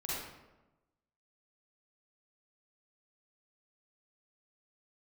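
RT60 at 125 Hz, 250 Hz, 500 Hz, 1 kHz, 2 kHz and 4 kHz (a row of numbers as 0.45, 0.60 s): 1.2, 1.2, 1.1, 1.0, 0.85, 0.65 s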